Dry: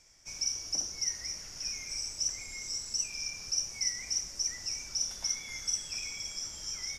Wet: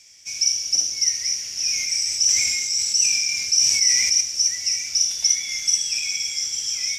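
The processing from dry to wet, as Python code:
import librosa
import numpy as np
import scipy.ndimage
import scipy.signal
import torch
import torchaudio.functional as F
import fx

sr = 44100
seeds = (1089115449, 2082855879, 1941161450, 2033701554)

y = scipy.signal.sosfilt(scipy.signal.butter(2, 62.0, 'highpass', fs=sr, output='sos'), x)
y = fx.high_shelf_res(y, sr, hz=1800.0, db=11.5, q=1.5)
y = fx.echo_multitap(y, sr, ms=(74, 186, 848), db=(-11.0, -14.5, -9.5))
y = fx.sustainer(y, sr, db_per_s=24.0, at=(1.56, 4.21))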